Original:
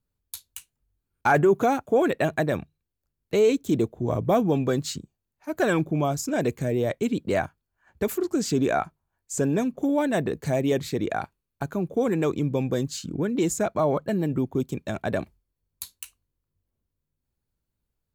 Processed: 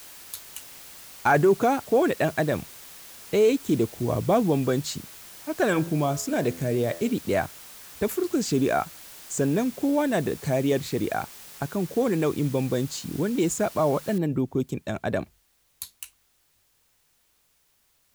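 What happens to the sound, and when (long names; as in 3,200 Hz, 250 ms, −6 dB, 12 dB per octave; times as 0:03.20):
0:05.68–0:07.17: hum removal 84.43 Hz, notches 23
0:14.18: noise floor change −45 dB −67 dB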